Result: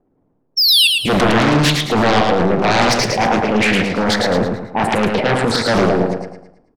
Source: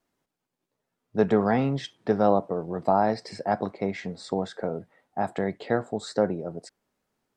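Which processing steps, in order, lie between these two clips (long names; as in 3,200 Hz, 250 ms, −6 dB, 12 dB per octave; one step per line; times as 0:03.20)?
sound drawn into the spectrogram fall, 0:00.61–0:00.95, 2,400–5,200 Hz −23 dBFS
low-pass that shuts in the quiet parts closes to 430 Hz, open at −22 dBFS
in parallel at −1 dB: downward compressor, threshold −30 dBFS, peak gain reduction 14.5 dB
on the sum: transient designer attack −4 dB, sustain +11 dB
sine wavefolder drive 17 dB, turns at −2.5 dBFS
on a send: repeating echo 119 ms, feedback 40%, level −3.5 dB
on the sum: four-comb reverb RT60 0.68 s, combs from 33 ms, DRR 17 dB
wrong playback speed 44.1 kHz file played as 48 kHz
highs frequency-modulated by the lows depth 0.58 ms
level −8.5 dB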